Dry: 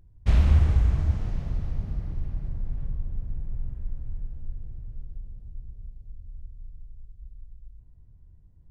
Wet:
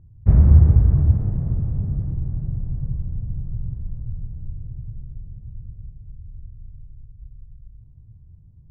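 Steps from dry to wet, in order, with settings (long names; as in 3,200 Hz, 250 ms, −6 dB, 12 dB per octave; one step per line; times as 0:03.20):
dynamic equaliser 390 Hz, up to +5 dB, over −46 dBFS, Q 1.2
Bessel low-pass filter 1,100 Hz, order 6
parametric band 120 Hz +14 dB 1.7 octaves
level −1 dB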